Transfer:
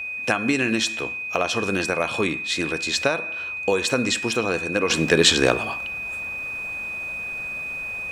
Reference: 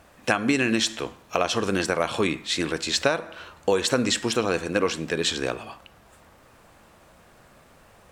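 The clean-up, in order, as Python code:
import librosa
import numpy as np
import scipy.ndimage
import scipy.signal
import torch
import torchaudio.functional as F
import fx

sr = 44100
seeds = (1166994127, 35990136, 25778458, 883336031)

y = fx.notch(x, sr, hz=2500.0, q=30.0)
y = fx.fix_level(y, sr, at_s=4.9, step_db=-9.0)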